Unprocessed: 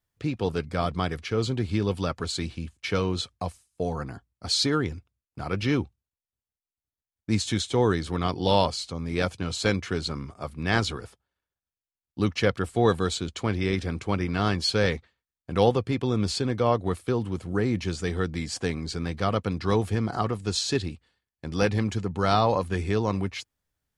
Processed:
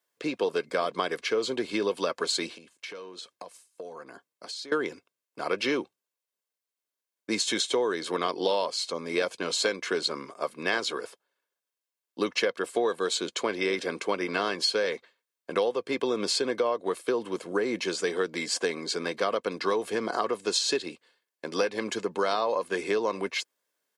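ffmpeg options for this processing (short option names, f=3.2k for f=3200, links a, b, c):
-filter_complex "[0:a]asettb=1/sr,asplit=3[a][b][c];[a]atrim=end=2.524[d];[b]atrim=start=2.52:end=4.72,asetpts=PTS-STARTPTS,afade=t=in:d=0.004:c=qsin,afade=t=out:st=2.196:d=0.004:c=qsin,acompressor=threshold=-40dB:ratio=12:attack=3.2:release=140:knee=1:detection=peak[e];[c]atrim=start=4.716[f];[d][e]acrossfade=d=0.004:c1=hsin:c2=qsin[g];[g][f]acrossfade=d=0.004:c1=qsin:c2=hsin,highpass=f=270:w=0.5412,highpass=f=270:w=1.3066,aecho=1:1:1.9:0.4,acompressor=threshold=-27dB:ratio=12,volume=4.5dB"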